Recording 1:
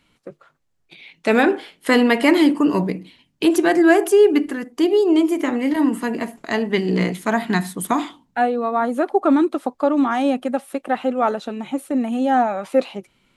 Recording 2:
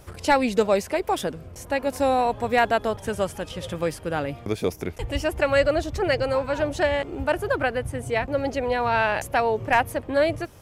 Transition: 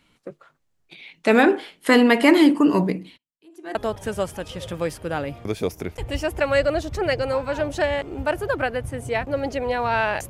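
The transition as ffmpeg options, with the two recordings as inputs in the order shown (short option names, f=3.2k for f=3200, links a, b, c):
-filter_complex "[0:a]asplit=3[a][b][c];[a]afade=t=out:st=3.16:d=0.02[d];[b]aeval=exprs='val(0)*pow(10,-39*(0.5-0.5*cos(2*PI*0.75*n/s))/20)':c=same,afade=t=in:st=3.16:d=0.02,afade=t=out:st=3.75:d=0.02[e];[c]afade=t=in:st=3.75:d=0.02[f];[d][e][f]amix=inputs=3:normalize=0,apad=whole_dur=10.29,atrim=end=10.29,atrim=end=3.752[g];[1:a]atrim=start=2.758:end=9.3[h];[g][h]acrossfade=d=0.004:c1=hsin:c2=hsin"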